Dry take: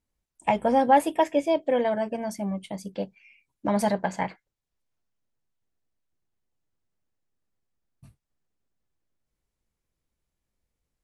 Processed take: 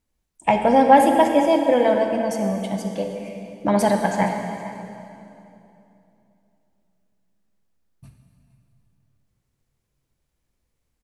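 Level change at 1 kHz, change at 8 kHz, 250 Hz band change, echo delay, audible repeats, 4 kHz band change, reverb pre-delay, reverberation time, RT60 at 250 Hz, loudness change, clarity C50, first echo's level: +6.5 dB, +6.5 dB, +7.0 dB, 464 ms, 1, +6.5 dB, 36 ms, 2.9 s, 3.4 s, +6.5 dB, 4.0 dB, −18.5 dB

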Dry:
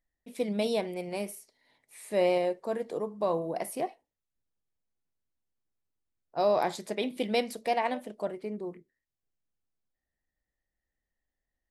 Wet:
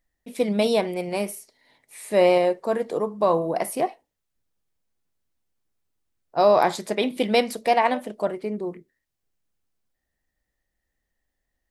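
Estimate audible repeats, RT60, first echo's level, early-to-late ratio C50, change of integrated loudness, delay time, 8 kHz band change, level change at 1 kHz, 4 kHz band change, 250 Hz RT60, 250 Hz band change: no echo audible, no reverb audible, no echo audible, no reverb audible, +8.0 dB, no echo audible, +7.5 dB, +9.0 dB, +7.5 dB, no reverb audible, +7.5 dB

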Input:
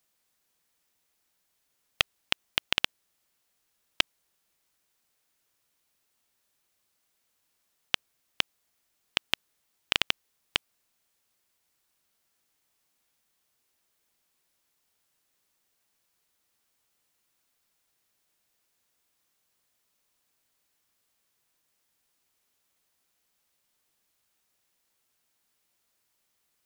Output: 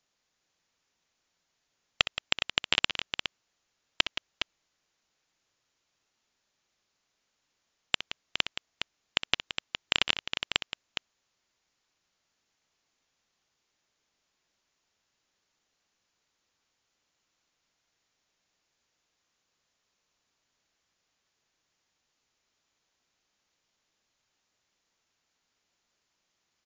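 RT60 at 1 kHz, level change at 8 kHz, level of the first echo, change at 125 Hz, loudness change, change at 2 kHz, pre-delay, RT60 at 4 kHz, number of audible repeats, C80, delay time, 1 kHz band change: no reverb audible, −0.5 dB, −12.5 dB, +1.0 dB, −0.5 dB, +1.0 dB, no reverb audible, no reverb audible, 3, no reverb audible, 63 ms, +1.0 dB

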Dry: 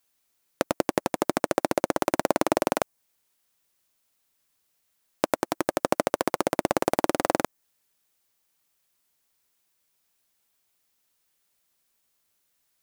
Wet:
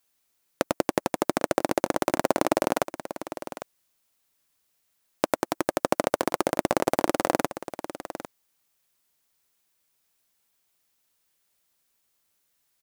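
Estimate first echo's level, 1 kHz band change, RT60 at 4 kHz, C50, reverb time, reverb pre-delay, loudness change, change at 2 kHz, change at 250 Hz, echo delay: −12.5 dB, 0.0 dB, no reverb audible, no reverb audible, no reverb audible, no reverb audible, −0.5 dB, +0.5 dB, +0.5 dB, 802 ms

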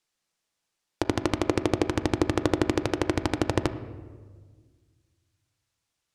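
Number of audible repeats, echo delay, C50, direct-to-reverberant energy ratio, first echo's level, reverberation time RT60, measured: no echo audible, no echo audible, 12.5 dB, 10.5 dB, no echo audible, 1.6 s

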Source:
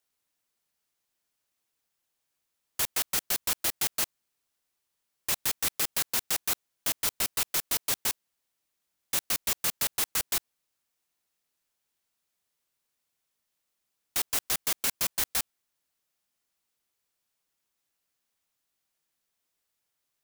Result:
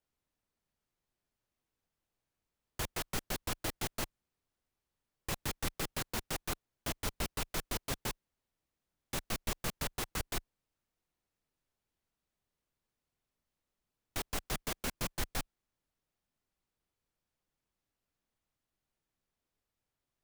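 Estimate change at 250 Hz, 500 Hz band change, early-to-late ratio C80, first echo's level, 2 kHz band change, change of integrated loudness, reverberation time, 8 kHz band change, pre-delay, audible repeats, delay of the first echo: +3.0 dB, 0.0 dB, no reverb audible, no echo audible, −6.0 dB, −10.5 dB, no reverb audible, −12.0 dB, no reverb audible, no echo audible, no echo audible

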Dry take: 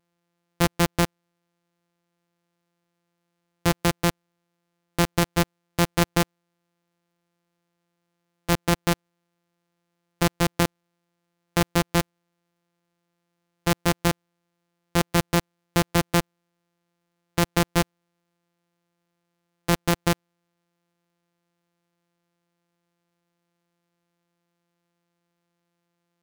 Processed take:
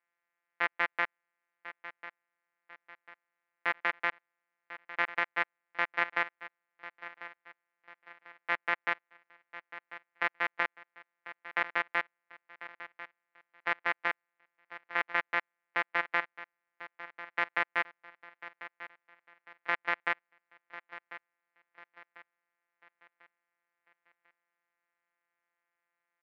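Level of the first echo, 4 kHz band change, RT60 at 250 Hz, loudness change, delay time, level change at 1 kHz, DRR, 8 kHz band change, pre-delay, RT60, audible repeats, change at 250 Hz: −15.0 dB, −14.5 dB, no reverb audible, −8.5 dB, 1,045 ms, −6.0 dB, no reverb audible, below −35 dB, no reverb audible, no reverb audible, 3, −26.5 dB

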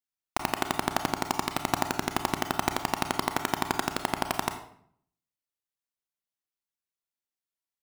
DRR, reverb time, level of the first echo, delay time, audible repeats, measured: 6.5 dB, 0.60 s, no echo audible, no echo audible, no echo audible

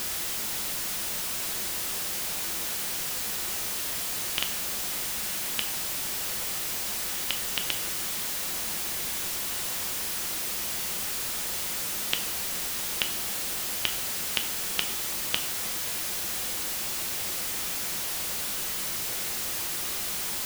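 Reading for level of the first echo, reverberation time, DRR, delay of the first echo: no echo audible, 0.70 s, 6.5 dB, no echo audible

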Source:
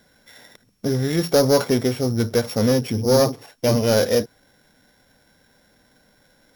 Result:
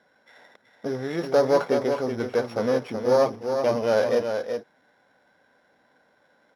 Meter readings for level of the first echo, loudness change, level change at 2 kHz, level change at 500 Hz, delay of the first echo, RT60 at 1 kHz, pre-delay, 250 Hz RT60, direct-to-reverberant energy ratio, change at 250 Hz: −6.5 dB, −4.0 dB, −2.5 dB, −2.0 dB, 376 ms, no reverb audible, no reverb audible, no reverb audible, no reverb audible, −8.0 dB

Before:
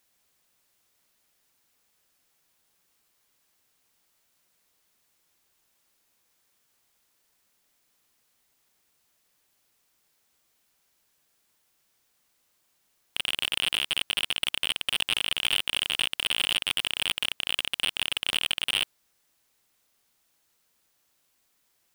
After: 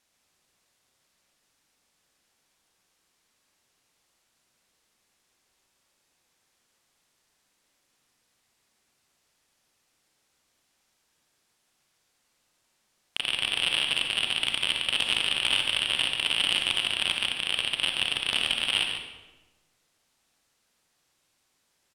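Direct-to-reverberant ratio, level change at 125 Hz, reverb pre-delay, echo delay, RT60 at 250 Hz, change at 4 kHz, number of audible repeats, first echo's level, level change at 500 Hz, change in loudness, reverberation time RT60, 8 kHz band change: 2.5 dB, +3.0 dB, 31 ms, 143 ms, 1.4 s, +1.5 dB, 1, −9.0 dB, +2.5 dB, +1.5 dB, 1.2 s, −1.0 dB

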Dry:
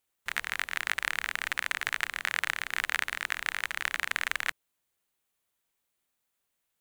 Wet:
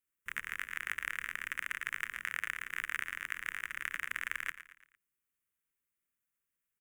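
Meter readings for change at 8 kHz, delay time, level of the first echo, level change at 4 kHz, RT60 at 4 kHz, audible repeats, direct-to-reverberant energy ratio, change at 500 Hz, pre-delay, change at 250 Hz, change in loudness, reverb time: −9.0 dB, 114 ms, −13.5 dB, −12.5 dB, no reverb audible, 4, no reverb audible, −14.0 dB, no reverb audible, −7.5 dB, −7.0 dB, no reverb audible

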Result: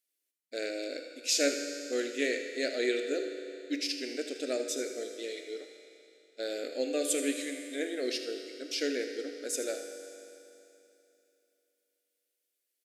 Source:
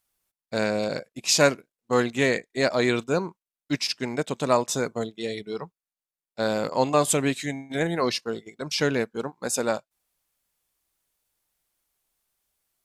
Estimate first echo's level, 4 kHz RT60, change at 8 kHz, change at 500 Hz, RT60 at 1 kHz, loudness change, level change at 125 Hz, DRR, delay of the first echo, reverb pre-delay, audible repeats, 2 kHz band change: −11.5 dB, 2.8 s, −5.5 dB, −7.5 dB, 2.9 s, −8.0 dB, below −40 dB, 4.5 dB, 79 ms, 10 ms, 1, −8.5 dB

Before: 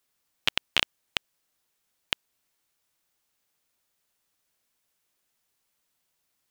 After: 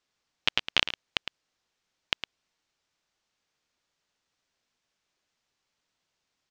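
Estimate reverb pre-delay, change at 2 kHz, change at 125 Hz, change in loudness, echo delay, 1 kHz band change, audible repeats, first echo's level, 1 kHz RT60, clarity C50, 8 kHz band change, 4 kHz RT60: no reverb audible, +0.5 dB, +0.5 dB, +0.5 dB, 109 ms, +0.5 dB, 1, −10.0 dB, no reverb audible, no reverb audible, −3.5 dB, no reverb audible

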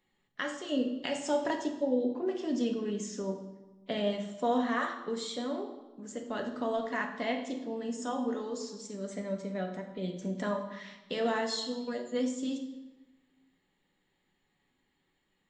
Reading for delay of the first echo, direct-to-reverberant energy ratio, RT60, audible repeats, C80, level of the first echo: no echo audible, 3.0 dB, 1.1 s, no echo audible, 10.0 dB, no echo audible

